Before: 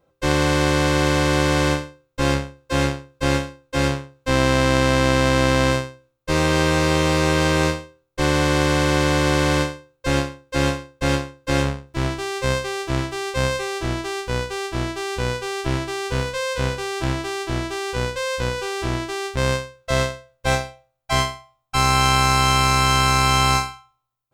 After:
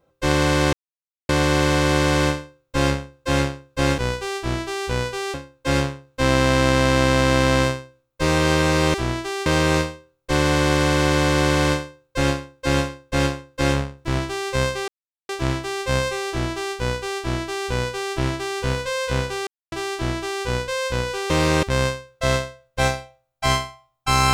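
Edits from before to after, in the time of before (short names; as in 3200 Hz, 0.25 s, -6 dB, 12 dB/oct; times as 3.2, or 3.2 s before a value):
0.73 insert silence 0.56 s
7.02–7.35 swap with 18.78–19.3
12.77 insert silence 0.41 s
14.27–15.63 copy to 3.42
16.95–17.2 mute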